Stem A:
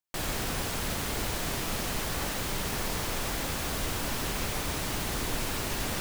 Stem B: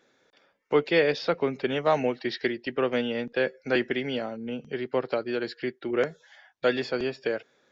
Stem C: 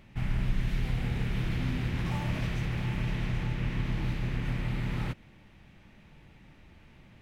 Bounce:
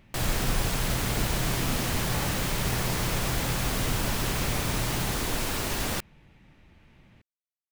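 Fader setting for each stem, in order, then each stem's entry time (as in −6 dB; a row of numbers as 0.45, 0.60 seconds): +2.5 dB, muted, −1.5 dB; 0.00 s, muted, 0.00 s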